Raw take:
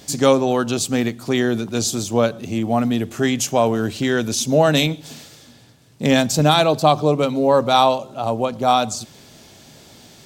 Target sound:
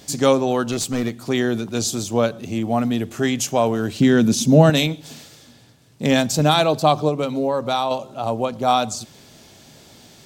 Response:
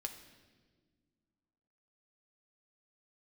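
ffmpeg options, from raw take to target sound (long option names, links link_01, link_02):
-filter_complex "[0:a]asettb=1/sr,asplit=3[link_01][link_02][link_03];[link_01]atrim=end=0.714[link_04];[link_02]atrim=start=0.71:end=1.12,asetpts=PTS-STARTPTS,afade=type=in:duration=0.004:curve=qsin,afade=type=out:start_time=0.406:duration=0.004:curve=qsin,aeval=exprs='clip(val(0),-1,0.119)':channel_layout=same[link_05];[link_03]atrim=start=1.116[link_06];[link_04][link_05]acrossfade=duration=0.004:curve1=hsin:curve2=qsin[link_07];[link_07][link_06]acrossfade=duration=0.004:curve1=qsin:curve2=hsin,asettb=1/sr,asplit=3[link_08][link_09][link_10];[link_08]atrim=end=4.004[link_11];[link_09]atrim=start=4:end=4.7,asetpts=PTS-STARTPTS,afade=type=in:duration=0.004:curve=qsin,afade=type=out:start_time=0.696:duration=0.004:curve=qsin,equalizer=frequency=190:width_type=o:width=1.3:gain=13[link_12];[link_10]atrim=start=4.696[link_13];[link_11][link_12]acrossfade=duration=0.004:curve1=hsin:curve2=qsin[link_14];[link_14][link_13]acrossfade=duration=0.004:curve1=qsin:curve2=hsin,asettb=1/sr,asplit=3[link_15][link_16][link_17];[link_15]atrim=end=7.084[link_18];[link_16]atrim=start=7.08:end=7.91,asetpts=PTS-STARTPTS,afade=type=in:duration=0.004:curve=qsin,afade=type=out:start_time=0.826:duration=0.004:curve=qsin,acompressor=threshold=-16dB:ratio=6[link_19];[link_17]atrim=start=7.906[link_20];[link_18][link_19]acrossfade=duration=0.004:curve1=hsin:curve2=qsin[link_21];[link_21][link_20]acrossfade=duration=0.004:curve1=qsin:curve2=hsin,volume=-1.5dB"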